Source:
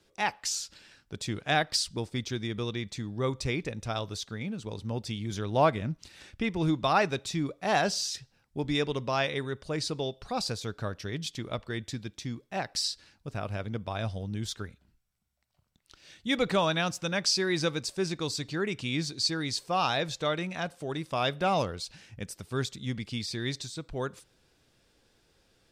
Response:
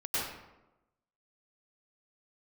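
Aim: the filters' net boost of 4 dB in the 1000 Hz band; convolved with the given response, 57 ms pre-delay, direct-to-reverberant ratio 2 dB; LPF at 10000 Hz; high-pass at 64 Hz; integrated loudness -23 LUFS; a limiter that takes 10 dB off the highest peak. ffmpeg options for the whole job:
-filter_complex "[0:a]highpass=64,lowpass=10k,equalizer=f=1k:t=o:g=5.5,alimiter=limit=-17.5dB:level=0:latency=1,asplit=2[a][b];[1:a]atrim=start_sample=2205,adelay=57[c];[b][c]afir=irnorm=-1:irlink=0,volume=-9dB[d];[a][d]amix=inputs=2:normalize=0,volume=6.5dB"

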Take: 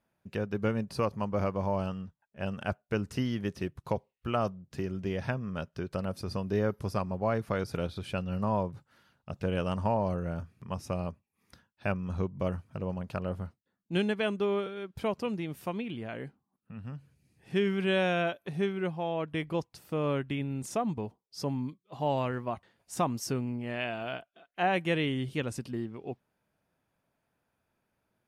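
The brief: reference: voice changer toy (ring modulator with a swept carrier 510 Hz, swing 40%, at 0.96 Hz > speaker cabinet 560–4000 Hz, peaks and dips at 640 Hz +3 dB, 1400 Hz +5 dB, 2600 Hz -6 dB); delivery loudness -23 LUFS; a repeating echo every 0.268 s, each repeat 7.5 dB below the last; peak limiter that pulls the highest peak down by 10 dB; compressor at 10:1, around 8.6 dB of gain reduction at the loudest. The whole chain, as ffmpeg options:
-af "acompressor=threshold=-32dB:ratio=10,alimiter=level_in=7dB:limit=-24dB:level=0:latency=1,volume=-7dB,aecho=1:1:268|536|804|1072|1340:0.422|0.177|0.0744|0.0312|0.0131,aeval=exprs='val(0)*sin(2*PI*510*n/s+510*0.4/0.96*sin(2*PI*0.96*n/s))':c=same,highpass=560,equalizer=f=640:t=q:w=4:g=3,equalizer=f=1.4k:t=q:w=4:g=5,equalizer=f=2.6k:t=q:w=4:g=-6,lowpass=f=4k:w=0.5412,lowpass=f=4k:w=1.3066,volume=23dB"

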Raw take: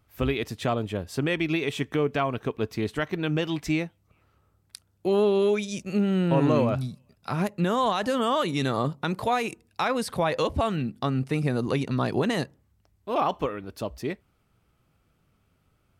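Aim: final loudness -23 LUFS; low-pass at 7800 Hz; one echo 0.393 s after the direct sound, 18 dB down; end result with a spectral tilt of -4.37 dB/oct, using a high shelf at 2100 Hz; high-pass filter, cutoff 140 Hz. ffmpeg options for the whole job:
-af "highpass=140,lowpass=7.8k,highshelf=f=2.1k:g=3.5,aecho=1:1:393:0.126,volume=4dB"

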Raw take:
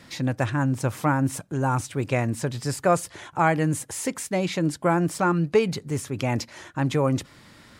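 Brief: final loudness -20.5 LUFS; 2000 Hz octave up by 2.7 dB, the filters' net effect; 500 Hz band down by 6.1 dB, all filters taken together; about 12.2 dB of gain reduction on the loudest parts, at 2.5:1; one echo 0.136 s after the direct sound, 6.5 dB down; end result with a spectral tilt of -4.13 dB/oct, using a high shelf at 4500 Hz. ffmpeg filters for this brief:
-af "equalizer=f=500:t=o:g=-8,equalizer=f=2k:t=o:g=3,highshelf=f=4.5k:g=7,acompressor=threshold=-37dB:ratio=2.5,aecho=1:1:136:0.473,volume=14.5dB"

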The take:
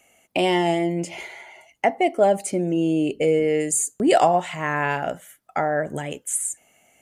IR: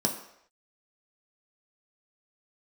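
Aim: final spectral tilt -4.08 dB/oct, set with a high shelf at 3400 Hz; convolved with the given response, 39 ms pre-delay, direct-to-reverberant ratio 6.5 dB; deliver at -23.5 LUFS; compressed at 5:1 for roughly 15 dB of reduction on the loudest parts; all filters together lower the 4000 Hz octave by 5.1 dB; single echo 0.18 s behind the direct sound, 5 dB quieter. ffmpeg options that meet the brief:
-filter_complex "[0:a]highshelf=f=3.4k:g=-4.5,equalizer=f=4k:t=o:g=-5,acompressor=threshold=-30dB:ratio=5,aecho=1:1:180:0.562,asplit=2[a][b];[1:a]atrim=start_sample=2205,adelay=39[c];[b][c]afir=irnorm=-1:irlink=0,volume=-14.5dB[d];[a][d]amix=inputs=2:normalize=0,volume=7dB"

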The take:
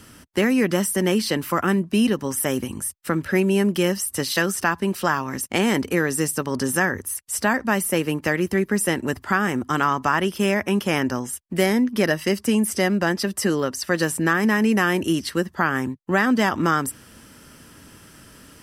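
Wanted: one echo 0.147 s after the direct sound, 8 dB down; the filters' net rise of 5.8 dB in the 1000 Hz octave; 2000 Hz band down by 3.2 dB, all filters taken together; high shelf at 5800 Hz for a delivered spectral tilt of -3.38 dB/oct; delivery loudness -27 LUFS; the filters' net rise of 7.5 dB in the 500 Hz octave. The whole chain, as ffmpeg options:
-af "equalizer=f=500:t=o:g=8.5,equalizer=f=1k:t=o:g=7,equalizer=f=2k:t=o:g=-6.5,highshelf=f=5.8k:g=-8.5,aecho=1:1:147:0.398,volume=-9dB"

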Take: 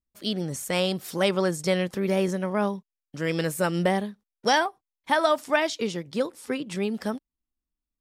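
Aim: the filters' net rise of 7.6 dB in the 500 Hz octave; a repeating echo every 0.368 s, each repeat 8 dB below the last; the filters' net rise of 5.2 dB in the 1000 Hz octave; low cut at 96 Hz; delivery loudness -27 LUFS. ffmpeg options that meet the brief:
-af "highpass=96,equalizer=f=500:t=o:g=8.5,equalizer=f=1k:t=o:g=3.5,aecho=1:1:368|736|1104|1472|1840:0.398|0.159|0.0637|0.0255|0.0102,volume=-6dB"

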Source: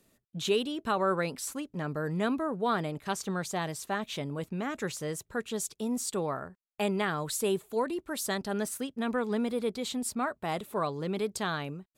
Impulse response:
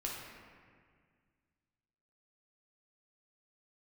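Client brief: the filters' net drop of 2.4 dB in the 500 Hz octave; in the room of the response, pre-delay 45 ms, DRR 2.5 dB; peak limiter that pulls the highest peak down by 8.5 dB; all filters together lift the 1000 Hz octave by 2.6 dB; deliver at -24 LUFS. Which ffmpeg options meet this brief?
-filter_complex "[0:a]equalizer=f=500:t=o:g=-4,equalizer=f=1k:t=o:g=4.5,alimiter=level_in=0.5dB:limit=-24dB:level=0:latency=1,volume=-0.5dB,asplit=2[a][b];[1:a]atrim=start_sample=2205,adelay=45[c];[b][c]afir=irnorm=-1:irlink=0,volume=-4dB[d];[a][d]amix=inputs=2:normalize=0,volume=9dB"

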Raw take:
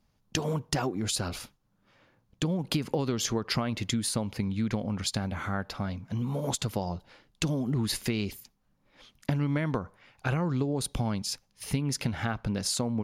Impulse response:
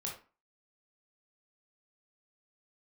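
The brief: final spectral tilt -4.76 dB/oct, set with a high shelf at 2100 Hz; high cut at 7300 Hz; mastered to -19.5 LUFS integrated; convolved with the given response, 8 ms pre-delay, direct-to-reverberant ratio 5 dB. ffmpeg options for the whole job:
-filter_complex "[0:a]lowpass=7.3k,highshelf=f=2.1k:g=3.5,asplit=2[a][b];[1:a]atrim=start_sample=2205,adelay=8[c];[b][c]afir=irnorm=-1:irlink=0,volume=-5dB[d];[a][d]amix=inputs=2:normalize=0,volume=9.5dB"

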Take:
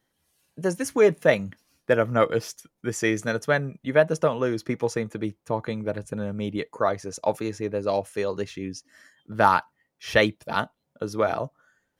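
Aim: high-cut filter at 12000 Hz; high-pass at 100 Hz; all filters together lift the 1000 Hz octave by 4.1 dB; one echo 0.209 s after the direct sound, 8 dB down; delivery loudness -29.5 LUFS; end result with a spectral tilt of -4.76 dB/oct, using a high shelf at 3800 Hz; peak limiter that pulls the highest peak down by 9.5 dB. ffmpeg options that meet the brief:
-af "highpass=100,lowpass=12k,equalizer=f=1k:t=o:g=5.5,highshelf=f=3.8k:g=-4,alimiter=limit=-10.5dB:level=0:latency=1,aecho=1:1:209:0.398,volume=-3.5dB"

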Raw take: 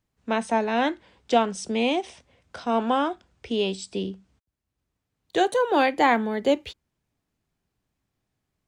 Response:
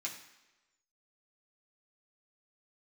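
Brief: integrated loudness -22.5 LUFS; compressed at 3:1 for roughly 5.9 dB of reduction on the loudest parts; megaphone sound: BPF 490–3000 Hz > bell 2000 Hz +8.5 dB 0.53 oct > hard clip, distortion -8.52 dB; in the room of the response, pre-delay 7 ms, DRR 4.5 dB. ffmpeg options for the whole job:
-filter_complex "[0:a]acompressor=threshold=-23dB:ratio=3,asplit=2[a][b];[1:a]atrim=start_sample=2205,adelay=7[c];[b][c]afir=irnorm=-1:irlink=0,volume=-5dB[d];[a][d]amix=inputs=2:normalize=0,highpass=490,lowpass=3k,equalizer=f=2k:t=o:w=0.53:g=8.5,asoftclip=type=hard:threshold=-26dB,volume=9.5dB"

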